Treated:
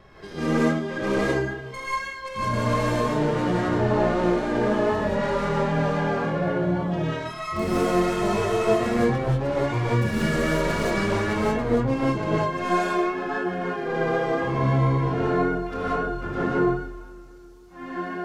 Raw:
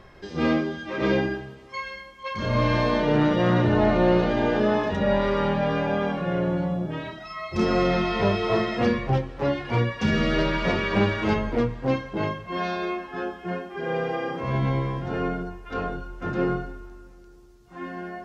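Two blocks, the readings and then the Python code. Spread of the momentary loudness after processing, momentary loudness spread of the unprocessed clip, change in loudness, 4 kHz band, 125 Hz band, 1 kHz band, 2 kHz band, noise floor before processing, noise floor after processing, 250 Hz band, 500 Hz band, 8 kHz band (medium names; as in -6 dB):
7 LU, 13 LU, +0.5 dB, -2.5 dB, +1.0 dB, +2.5 dB, +1.0 dB, -48 dBFS, -41 dBFS, +0.5 dB, +1.0 dB, no reading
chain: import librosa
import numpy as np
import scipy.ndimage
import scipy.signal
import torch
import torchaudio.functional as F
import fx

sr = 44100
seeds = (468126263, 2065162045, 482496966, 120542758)

y = fx.tracing_dist(x, sr, depth_ms=0.18)
y = fx.dynamic_eq(y, sr, hz=3700.0, q=0.71, threshold_db=-41.0, ratio=4.0, max_db=-5)
y = fx.rider(y, sr, range_db=3, speed_s=0.5)
y = fx.vibrato(y, sr, rate_hz=3.8, depth_cents=26.0)
y = fx.rev_gated(y, sr, seeds[0], gate_ms=210, shape='rising', drr_db=-7.0)
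y = y * 10.0 ** (-5.5 / 20.0)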